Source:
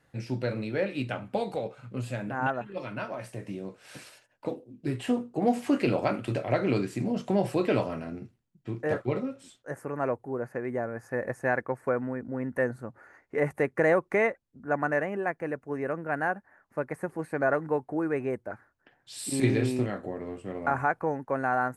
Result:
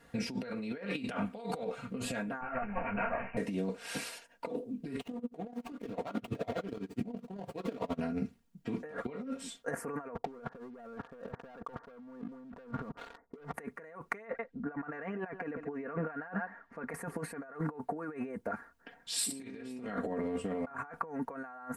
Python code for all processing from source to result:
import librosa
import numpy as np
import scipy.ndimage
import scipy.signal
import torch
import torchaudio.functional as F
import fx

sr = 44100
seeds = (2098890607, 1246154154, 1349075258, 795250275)

y = fx.chain(x, sr, fx.lower_of_two(delay_ms=1.3),
    fx.resample_bad(factor=8, down='none', up='filtered'),
    fx.detune_double(cents=30), at=(2.41, 3.37))
y = fx.chain(y, sr, fx.median_filter(points=25),
    fx.tremolo_db(hz=12.0, depth_db=33), at=(5.0, 8.01))
y = fx.chain(y, sr, fx.lowpass(hz=1300.0, slope=24),
    fx.leveller(passes=3), at=(10.15, 13.54))
y = fx.chain(y, sr, fx.lowpass(hz=3900.0, slope=12),
    fx.echo_single(ms=138, db=-22.5), at=(14.25, 16.89))
y = fx.dynamic_eq(y, sr, hz=1300.0, q=1.5, threshold_db=-43.0, ratio=4.0, max_db=6)
y = y + 0.8 * np.pad(y, (int(4.3 * sr / 1000.0), 0))[:len(y)]
y = fx.over_compress(y, sr, threshold_db=-37.0, ratio=-1.0)
y = F.gain(torch.from_numpy(y), -4.0).numpy()